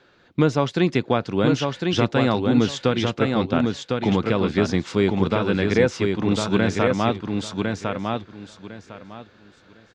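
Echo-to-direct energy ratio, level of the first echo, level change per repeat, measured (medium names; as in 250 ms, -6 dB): -4.0 dB, -4.0 dB, -13.5 dB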